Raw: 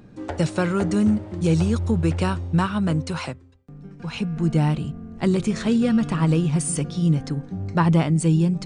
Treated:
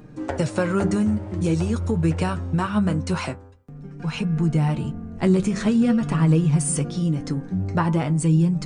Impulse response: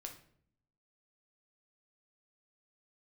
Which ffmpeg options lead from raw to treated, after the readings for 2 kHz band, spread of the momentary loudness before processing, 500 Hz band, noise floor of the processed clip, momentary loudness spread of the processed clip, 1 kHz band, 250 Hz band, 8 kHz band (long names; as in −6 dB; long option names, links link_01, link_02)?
−0.5 dB, 10 LU, 0.0 dB, −42 dBFS, 9 LU, −0.5 dB, 0.0 dB, +1.0 dB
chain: -af "equalizer=frequency=3700:width_type=o:width=0.9:gain=-4.5,bandreject=frequency=98.87:width_type=h:width=4,bandreject=frequency=197.74:width_type=h:width=4,bandreject=frequency=296.61:width_type=h:width=4,bandreject=frequency=395.48:width_type=h:width=4,bandreject=frequency=494.35:width_type=h:width=4,bandreject=frequency=593.22:width_type=h:width=4,bandreject=frequency=692.09:width_type=h:width=4,bandreject=frequency=790.96:width_type=h:width=4,bandreject=frequency=889.83:width_type=h:width=4,bandreject=frequency=988.7:width_type=h:width=4,bandreject=frequency=1087.57:width_type=h:width=4,bandreject=frequency=1186.44:width_type=h:width=4,bandreject=frequency=1285.31:width_type=h:width=4,bandreject=frequency=1384.18:width_type=h:width=4,bandreject=frequency=1483.05:width_type=h:width=4,bandreject=frequency=1581.92:width_type=h:width=4,bandreject=frequency=1680.79:width_type=h:width=4,acompressor=threshold=-23dB:ratio=2,flanger=delay=6.5:depth=4.3:regen=48:speed=0.47:shape=sinusoidal,volume=7.5dB"